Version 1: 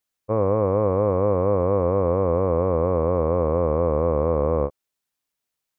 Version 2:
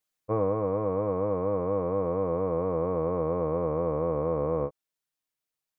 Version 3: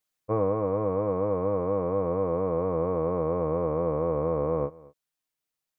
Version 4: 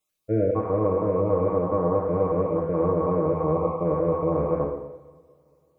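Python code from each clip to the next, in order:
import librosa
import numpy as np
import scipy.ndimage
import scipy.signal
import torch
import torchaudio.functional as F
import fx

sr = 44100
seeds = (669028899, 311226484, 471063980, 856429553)

y1 = x + 0.54 * np.pad(x, (int(6.4 * sr / 1000.0), 0))[:len(x)]
y1 = fx.rider(y1, sr, range_db=10, speed_s=0.5)
y1 = y1 * 10.0 ** (-7.5 / 20.0)
y2 = y1 + 10.0 ** (-22.5 / 20.0) * np.pad(y1, (int(228 * sr / 1000.0), 0))[:len(y1)]
y2 = y2 * 10.0 ** (1.0 / 20.0)
y3 = fx.spec_dropout(y2, sr, seeds[0], share_pct=30)
y3 = fx.rev_double_slope(y3, sr, seeds[1], early_s=0.91, late_s=3.4, knee_db=-25, drr_db=0.0)
y3 = y3 * 10.0 ** (2.0 / 20.0)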